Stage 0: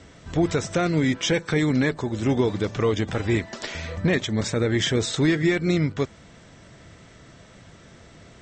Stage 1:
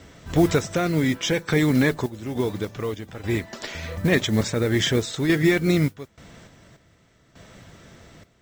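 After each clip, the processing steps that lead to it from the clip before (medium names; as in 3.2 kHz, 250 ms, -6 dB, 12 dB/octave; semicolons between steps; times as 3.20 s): random-step tremolo 3.4 Hz, depth 85%; modulation noise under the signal 24 dB; trim +3.5 dB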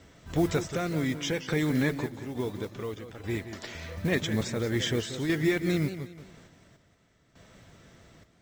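modulated delay 180 ms, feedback 34%, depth 139 cents, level -11 dB; trim -7.5 dB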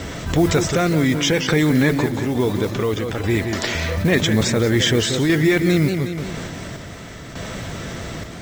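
level flattener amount 50%; trim +8 dB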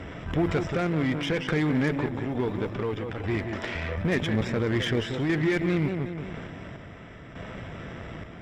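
Savitzky-Golay filter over 25 samples; Chebyshev shaper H 8 -23 dB, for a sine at -5.5 dBFS; trim -8.5 dB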